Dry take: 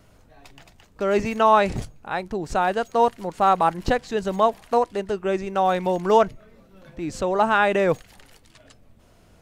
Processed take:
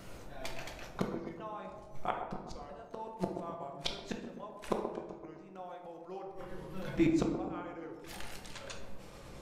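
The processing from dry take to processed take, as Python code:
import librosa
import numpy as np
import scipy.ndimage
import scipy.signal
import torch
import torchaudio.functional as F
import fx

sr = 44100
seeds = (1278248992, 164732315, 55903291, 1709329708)

y = fx.pitch_ramps(x, sr, semitones=-4.0, every_ms=1347)
y = fx.low_shelf(y, sr, hz=220.0, db=-4.5)
y = fx.gate_flip(y, sr, shuts_db=-24.0, range_db=-33)
y = fx.echo_wet_bandpass(y, sr, ms=128, feedback_pct=58, hz=490.0, wet_db=-6.0)
y = fx.room_shoebox(y, sr, seeds[0], volume_m3=330.0, walls='mixed', distance_m=0.82)
y = F.gain(torch.from_numpy(y), 5.5).numpy()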